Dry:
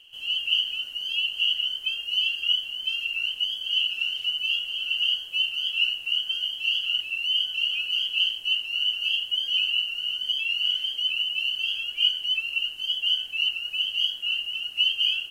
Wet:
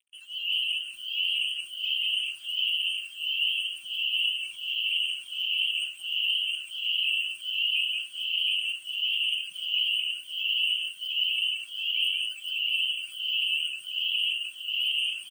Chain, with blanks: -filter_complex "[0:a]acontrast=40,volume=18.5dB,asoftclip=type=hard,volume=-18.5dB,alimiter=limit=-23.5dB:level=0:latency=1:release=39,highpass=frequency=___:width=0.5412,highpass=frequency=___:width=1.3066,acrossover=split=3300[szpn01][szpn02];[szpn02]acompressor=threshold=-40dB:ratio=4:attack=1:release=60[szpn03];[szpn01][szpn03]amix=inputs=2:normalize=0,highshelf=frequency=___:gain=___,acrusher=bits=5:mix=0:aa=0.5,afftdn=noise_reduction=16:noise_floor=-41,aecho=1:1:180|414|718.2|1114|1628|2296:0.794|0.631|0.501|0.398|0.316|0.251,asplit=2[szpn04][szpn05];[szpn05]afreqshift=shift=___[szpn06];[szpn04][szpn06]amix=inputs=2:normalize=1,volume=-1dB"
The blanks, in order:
1.4k, 1.4k, 11k, 5, -1.4